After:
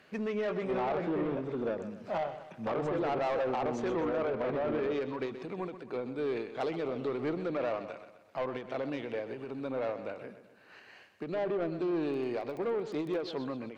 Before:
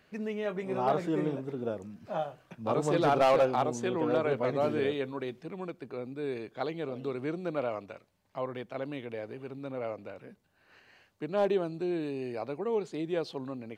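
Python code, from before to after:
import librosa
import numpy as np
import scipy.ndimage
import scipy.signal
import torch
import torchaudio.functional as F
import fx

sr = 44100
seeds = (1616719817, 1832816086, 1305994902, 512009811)

p1 = fx.env_lowpass_down(x, sr, base_hz=1900.0, full_db=-24.5)
p2 = fx.highpass(p1, sr, hz=220.0, slope=6)
p3 = fx.high_shelf(p2, sr, hz=5000.0, db=-5.0)
p4 = fx.over_compress(p3, sr, threshold_db=-32.0, ratio=-0.5)
p5 = p3 + (p4 * librosa.db_to_amplitude(2.5))
p6 = fx.dmg_crackle(p5, sr, seeds[0], per_s=12.0, level_db=-34.0, at=(11.99, 13.16), fade=0.02)
p7 = 10.0 ** (-24.0 / 20.0) * np.tanh(p6 / 10.0 ** (-24.0 / 20.0))
p8 = p7 + fx.echo_feedback(p7, sr, ms=127, feedback_pct=46, wet_db=-12, dry=0)
p9 = fx.end_taper(p8, sr, db_per_s=120.0)
y = p9 * librosa.db_to_amplitude(-3.0)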